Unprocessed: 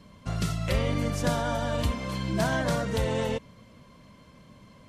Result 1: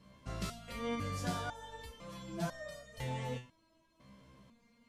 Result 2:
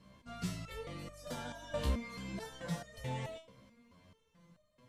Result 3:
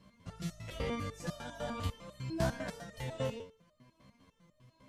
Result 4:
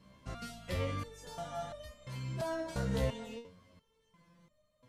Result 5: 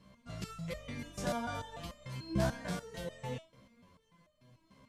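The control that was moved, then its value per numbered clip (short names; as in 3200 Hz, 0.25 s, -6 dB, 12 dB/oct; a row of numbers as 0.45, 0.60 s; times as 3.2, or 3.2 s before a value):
stepped resonator, rate: 2, 4.6, 10, 2.9, 6.8 Hz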